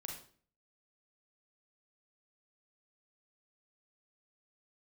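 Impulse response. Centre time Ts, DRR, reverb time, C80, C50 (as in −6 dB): 32 ms, 0.0 dB, 0.45 s, 9.0 dB, 4.0 dB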